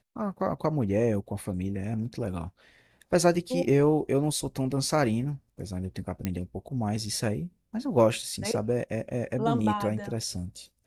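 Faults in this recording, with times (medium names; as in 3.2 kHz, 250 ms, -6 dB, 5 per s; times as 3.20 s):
6.25 s: pop -15 dBFS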